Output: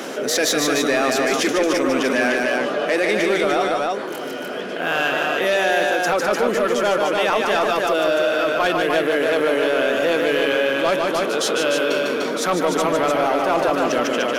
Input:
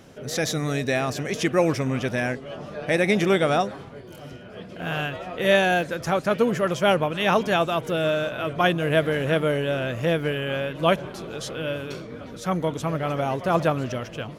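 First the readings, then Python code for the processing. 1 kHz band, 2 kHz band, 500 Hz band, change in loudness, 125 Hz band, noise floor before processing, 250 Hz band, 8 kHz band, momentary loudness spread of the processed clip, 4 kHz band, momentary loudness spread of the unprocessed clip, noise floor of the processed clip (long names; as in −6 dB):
+5.5 dB, +6.5 dB, +5.5 dB, +4.5 dB, −10.0 dB, −41 dBFS, +3.0 dB, +10.0 dB, 3 LU, +6.5 dB, 13 LU, −28 dBFS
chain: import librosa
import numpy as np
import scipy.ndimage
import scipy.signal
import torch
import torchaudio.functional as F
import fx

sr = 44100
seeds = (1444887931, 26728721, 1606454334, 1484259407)

p1 = scipy.signal.sosfilt(scipy.signal.butter(4, 260.0, 'highpass', fs=sr, output='sos'), x)
p2 = fx.peak_eq(p1, sr, hz=1400.0, db=2.5, octaves=0.72)
p3 = fx.rider(p2, sr, range_db=4, speed_s=0.5)
p4 = 10.0 ** (-18.5 / 20.0) * np.tanh(p3 / 10.0 ** (-18.5 / 20.0))
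p5 = p4 + fx.echo_multitap(p4, sr, ms=(151, 298), db=(-5.0, -4.5), dry=0)
p6 = fx.env_flatten(p5, sr, amount_pct=50)
y = F.gain(torch.from_numpy(p6), 3.5).numpy()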